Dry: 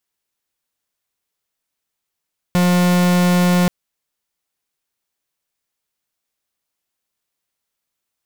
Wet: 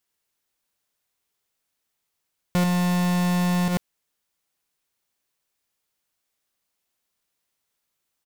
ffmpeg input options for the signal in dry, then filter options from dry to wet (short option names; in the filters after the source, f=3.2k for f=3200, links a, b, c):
-f lavfi -i "aevalsrc='0.2*(2*lt(mod(178*t,1),0.44)-1)':d=1.13:s=44100"
-af "aecho=1:1:91:0.531,alimiter=limit=-19.5dB:level=0:latency=1:release=102"